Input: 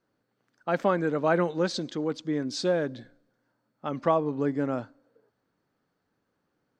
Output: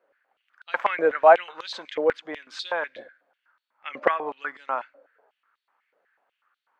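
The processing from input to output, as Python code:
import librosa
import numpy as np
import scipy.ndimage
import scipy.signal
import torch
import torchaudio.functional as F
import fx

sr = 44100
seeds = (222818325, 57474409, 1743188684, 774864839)

y = fx.high_shelf_res(x, sr, hz=3600.0, db=-11.5, q=1.5)
y = fx.filter_held_highpass(y, sr, hz=8.1, low_hz=550.0, high_hz=3800.0)
y = y * 10.0 ** (3.5 / 20.0)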